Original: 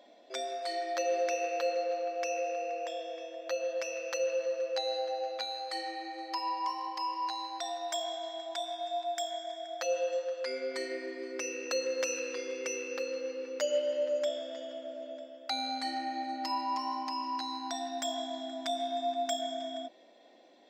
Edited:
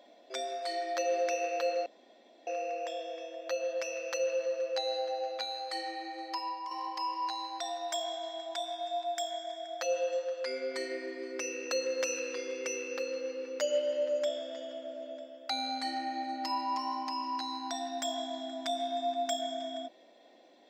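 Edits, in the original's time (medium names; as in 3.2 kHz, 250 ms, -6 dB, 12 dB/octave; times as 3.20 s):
1.86–2.47 s: room tone
6.27–6.71 s: fade out, to -8.5 dB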